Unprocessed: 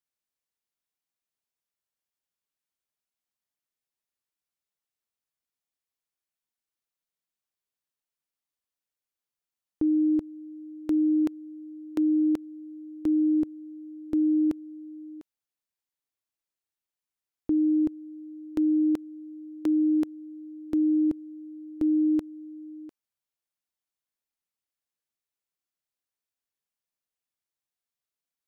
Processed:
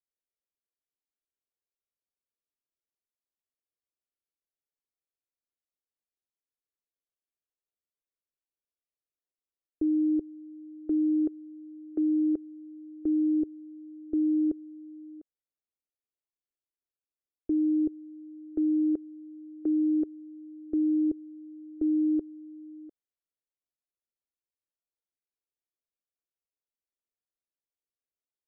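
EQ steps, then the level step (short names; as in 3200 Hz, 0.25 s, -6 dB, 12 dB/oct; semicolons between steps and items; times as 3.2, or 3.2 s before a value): LPF 1100 Hz 24 dB/oct; dynamic EQ 390 Hz, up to +5 dB, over -43 dBFS, Q 4.8; fixed phaser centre 400 Hz, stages 4; -2.0 dB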